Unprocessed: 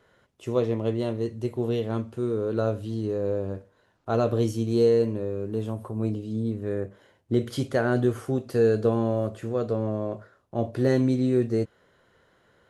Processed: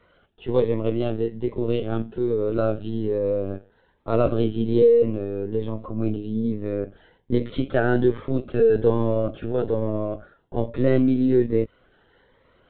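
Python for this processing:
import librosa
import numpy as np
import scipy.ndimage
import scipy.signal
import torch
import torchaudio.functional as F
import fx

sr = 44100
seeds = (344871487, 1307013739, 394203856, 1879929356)

y = fx.low_shelf(x, sr, hz=84.0, db=-10.5)
y = fx.lpc_vocoder(y, sr, seeds[0], excitation='pitch_kept', order=16)
y = fx.notch_cascade(y, sr, direction='rising', hz=1.2)
y = y * librosa.db_to_amplitude(5.5)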